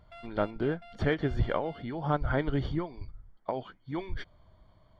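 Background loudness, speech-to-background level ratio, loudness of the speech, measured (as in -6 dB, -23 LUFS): -52.0 LUFS, 19.0 dB, -33.0 LUFS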